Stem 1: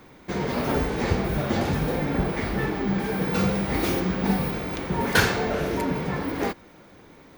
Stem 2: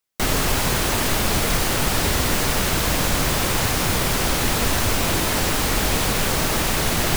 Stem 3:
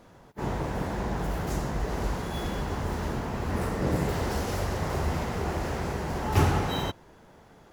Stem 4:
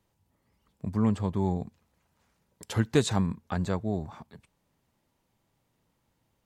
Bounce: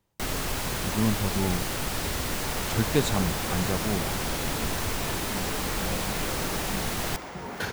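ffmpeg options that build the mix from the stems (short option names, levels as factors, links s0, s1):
-filter_complex "[0:a]adelay=2450,volume=0.224[s0];[1:a]volume=0.335[s1];[2:a]highpass=650,adelay=2050,volume=0.562[s2];[3:a]volume=0.944[s3];[s0][s1][s2][s3]amix=inputs=4:normalize=0"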